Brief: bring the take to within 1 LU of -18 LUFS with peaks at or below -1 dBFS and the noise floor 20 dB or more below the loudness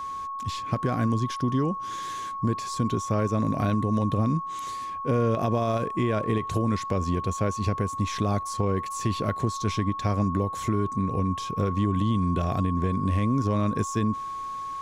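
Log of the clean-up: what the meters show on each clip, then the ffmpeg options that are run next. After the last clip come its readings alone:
steady tone 1100 Hz; tone level -31 dBFS; loudness -27.0 LUFS; peak -13.5 dBFS; loudness target -18.0 LUFS
-> -af "bandreject=f=1.1k:w=30"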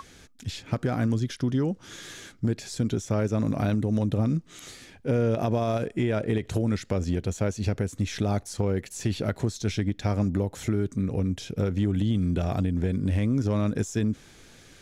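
steady tone none; loudness -27.5 LUFS; peak -14.0 dBFS; loudness target -18.0 LUFS
-> -af "volume=9.5dB"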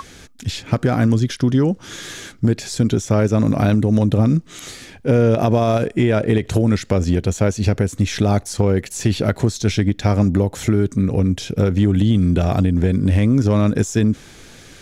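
loudness -18.0 LUFS; peak -4.5 dBFS; noise floor -43 dBFS

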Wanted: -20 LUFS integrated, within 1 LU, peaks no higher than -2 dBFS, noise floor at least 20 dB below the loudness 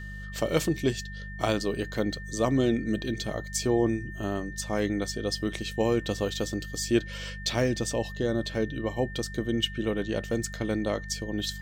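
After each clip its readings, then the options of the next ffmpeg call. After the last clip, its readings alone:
hum 50 Hz; harmonics up to 200 Hz; hum level -38 dBFS; steady tone 1800 Hz; tone level -42 dBFS; loudness -29.0 LUFS; peak -9.5 dBFS; loudness target -20.0 LUFS
-> -af "bandreject=f=50:t=h:w=4,bandreject=f=100:t=h:w=4,bandreject=f=150:t=h:w=4,bandreject=f=200:t=h:w=4"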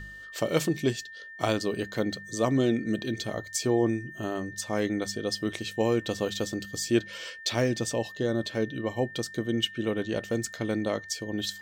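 hum none; steady tone 1800 Hz; tone level -42 dBFS
-> -af "bandreject=f=1.8k:w=30"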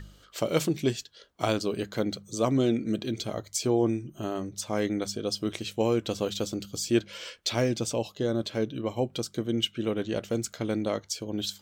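steady tone none; loudness -29.5 LUFS; peak -9.0 dBFS; loudness target -20.0 LUFS
-> -af "volume=9.5dB,alimiter=limit=-2dB:level=0:latency=1"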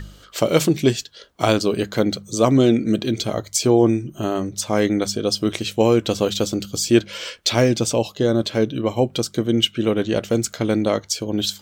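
loudness -20.0 LUFS; peak -2.0 dBFS; noise floor -48 dBFS

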